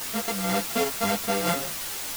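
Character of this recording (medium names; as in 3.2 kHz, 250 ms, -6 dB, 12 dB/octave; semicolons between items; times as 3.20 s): a buzz of ramps at a fixed pitch in blocks of 64 samples; tremolo saw up 1.2 Hz, depth 60%; a quantiser's noise floor 6-bit, dither triangular; a shimmering, thickened sound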